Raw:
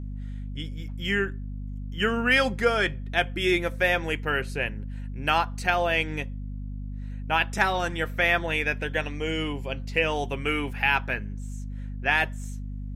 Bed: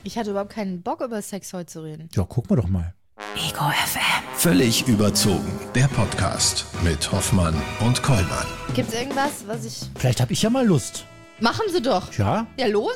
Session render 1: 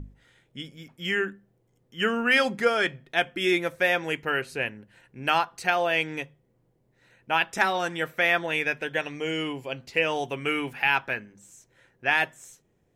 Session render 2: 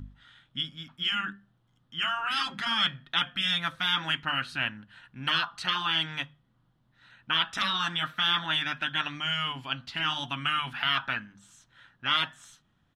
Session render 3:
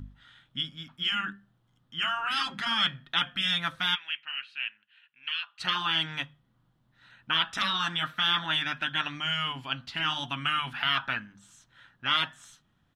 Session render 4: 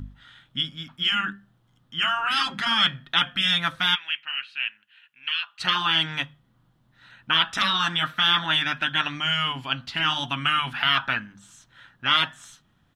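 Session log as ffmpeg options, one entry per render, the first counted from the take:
ffmpeg -i in.wav -af "bandreject=frequency=50:width_type=h:width=6,bandreject=frequency=100:width_type=h:width=6,bandreject=frequency=150:width_type=h:width=6,bandreject=frequency=200:width_type=h:width=6,bandreject=frequency=250:width_type=h:width=6" out.wav
ffmpeg -i in.wav -af "afftfilt=real='re*lt(hypot(re,im),0.158)':imag='im*lt(hypot(re,im),0.158)':win_size=1024:overlap=0.75,firequalizer=gain_entry='entry(260,0);entry(420,-17);entry(650,-4);entry(1300,11);entry(2200,-2);entry(3300,11);entry(5000,0);entry(7100,-7);entry(10000,-6);entry(15000,-17)':delay=0.05:min_phase=1" out.wav
ffmpeg -i in.wav -filter_complex "[0:a]asplit=3[link_01][link_02][link_03];[link_01]afade=type=out:start_time=3.94:duration=0.02[link_04];[link_02]bandpass=frequency=2600:width_type=q:width=4,afade=type=in:start_time=3.94:duration=0.02,afade=type=out:start_time=5.59:duration=0.02[link_05];[link_03]afade=type=in:start_time=5.59:duration=0.02[link_06];[link_04][link_05][link_06]amix=inputs=3:normalize=0" out.wav
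ffmpeg -i in.wav -af "volume=5.5dB" out.wav

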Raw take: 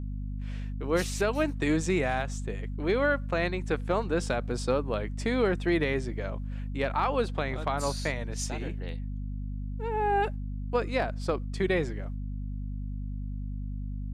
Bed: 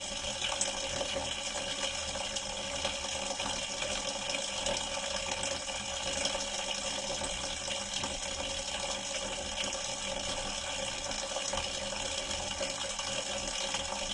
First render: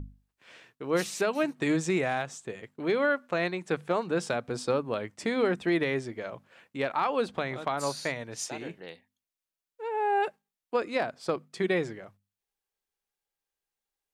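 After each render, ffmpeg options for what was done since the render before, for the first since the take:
ffmpeg -i in.wav -af "bandreject=frequency=50:width_type=h:width=6,bandreject=frequency=100:width_type=h:width=6,bandreject=frequency=150:width_type=h:width=6,bandreject=frequency=200:width_type=h:width=6,bandreject=frequency=250:width_type=h:width=6" out.wav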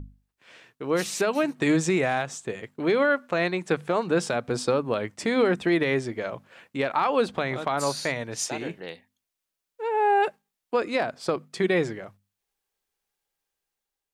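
ffmpeg -i in.wav -af "alimiter=limit=-19dB:level=0:latency=1:release=109,dynaudnorm=framelen=310:gausssize=5:maxgain=6dB" out.wav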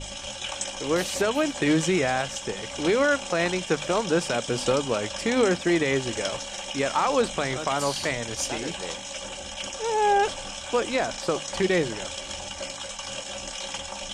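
ffmpeg -i in.wav -i bed.wav -filter_complex "[1:a]volume=0.5dB[link_01];[0:a][link_01]amix=inputs=2:normalize=0" out.wav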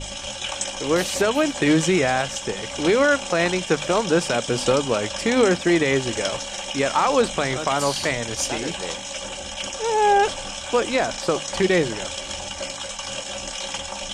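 ffmpeg -i in.wav -af "volume=4dB" out.wav

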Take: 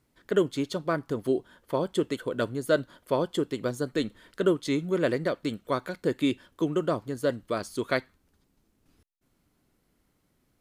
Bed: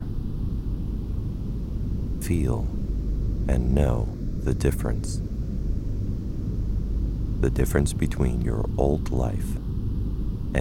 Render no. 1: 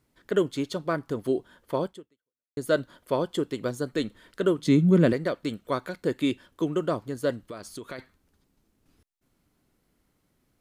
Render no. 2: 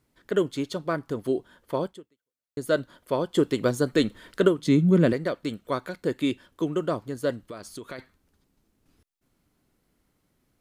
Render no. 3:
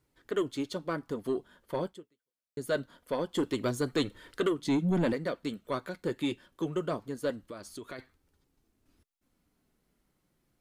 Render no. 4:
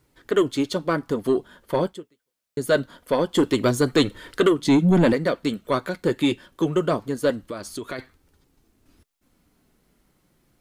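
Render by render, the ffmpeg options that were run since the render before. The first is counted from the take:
ffmpeg -i in.wav -filter_complex "[0:a]asettb=1/sr,asplit=3[link_01][link_02][link_03];[link_01]atrim=end=4.584[link_04];[link_02]atrim=start=4.58:end=5.13,asetpts=PTS-STARTPTS,afade=type=in:duration=0.004:curve=qsin,afade=type=out:start_time=0.546:duration=0.004:curve=qsin,equalizer=frequency=180:width=1.1:gain=15[link_05];[link_03]atrim=start=5.126[link_06];[link_04][link_05]acrossfade=duration=0.004:curve1=hsin:curve2=qsin[link_07];[link_07][link_06]acrossfade=duration=0.004:curve1=qsin:curve2=hsin,asplit=3[link_08][link_09][link_10];[link_08]afade=type=out:start_time=7.47:duration=0.02[link_11];[link_09]acompressor=threshold=-36dB:ratio=4:attack=3.2:release=140:knee=1:detection=peak,afade=type=in:start_time=7.47:duration=0.02,afade=type=out:start_time=7.98:duration=0.02[link_12];[link_10]afade=type=in:start_time=7.98:duration=0.02[link_13];[link_11][link_12][link_13]amix=inputs=3:normalize=0,asplit=2[link_14][link_15];[link_14]atrim=end=2.57,asetpts=PTS-STARTPTS,afade=type=out:start_time=1.86:duration=0.71:curve=exp[link_16];[link_15]atrim=start=2.57,asetpts=PTS-STARTPTS,afade=type=in:duration=0.004:curve=hsin[link_17];[link_16][link_17]concat=n=2:v=0:a=1" out.wav
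ffmpeg -i in.wav -filter_complex "[0:a]asplit=3[link_01][link_02][link_03];[link_01]afade=type=out:start_time=3.35:duration=0.02[link_04];[link_02]acontrast=55,afade=type=in:start_time=3.35:duration=0.02,afade=type=out:start_time=4.47:duration=0.02[link_05];[link_03]afade=type=in:start_time=4.47:duration=0.02[link_06];[link_04][link_05][link_06]amix=inputs=3:normalize=0" out.wav
ffmpeg -i in.wav -filter_complex "[0:a]flanger=delay=2.1:depth=3.8:regen=-57:speed=0.24:shape=triangular,acrossover=split=1700[link_01][link_02];[link_01]asoftclip=type=tanh:threshold=-22.5dB[link_03];[link_03][link_02]amix=inputs=2:normalize=0" out.wav
ffmpeg -i in.wav -af "volume=10.5dB" out.wav

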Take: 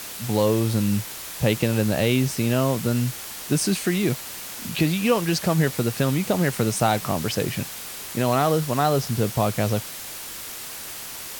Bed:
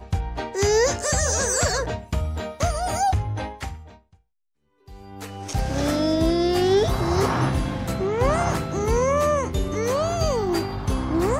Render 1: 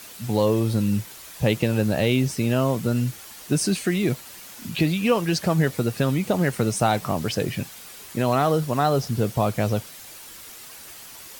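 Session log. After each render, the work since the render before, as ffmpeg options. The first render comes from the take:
ffmpeg -i in.wav -af "afftdn=noise_reduction=8:noise_floor=-36" out.wav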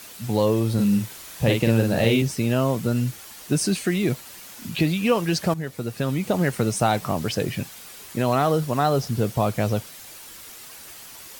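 ffmpeg -i in.wav -filter_complex "[0:a]asettb=1/sr,asplit=3[link_01][link_02][link_03];[link_01]atrim=end=0.744[link_04];[link_02]atrim=start=0.74:end=2.22,asetpts=PTS-STARTPTS,afade=type=in:duration=0.004:curve=qsin,afade=type=out:start_time=1.476:duration=0.004:curve=qsin,asplit=2[link_05][link_06];[link_06]adelay=44,volume=-3.5dB[link_07];[link_05][link_07]amix=inputs=2:normalize=0,atrim=end_sample=65268[link_08];[link_03]atrim=start=2.216[link_09];[link_04][link_08]acrossfade=duration=0.004:curve1=hsin:curve2=qsin[link_10];[link_10][link_09]acrossfade=duration=0.004:curve1=qsin:curve2=hsin,asplit=2[link_11][link_12];[link_11]atrim=end=5.54,asetpts=PTS-STARTPTS,afade=type=out:start_time=5.536:duration=0.004:curve=hsin:silence=0.237137[link_13];[link_12]atrim=start=5.54,asetpts=PTS-STARTPTS,afade=type=in:duration=0.81:silence=0.237137[link_14];[link_13][link_14]concat=n=2:v=0:a=1" out.wav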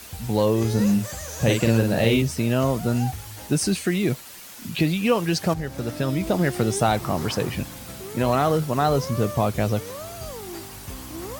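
ffmpeg -i in.wav -i bed.wav -filter_complex "[1:a]volume=-13.5dB[link_01];[0:a][link_01]amix=inputs=2:normalize=0" out.wav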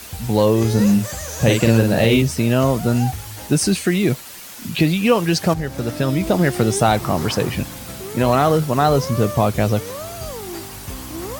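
ffmpeg -i in.wav -af "volume=5dB,alimiter=limit=-2dB:level=0:latency=1" out.wav

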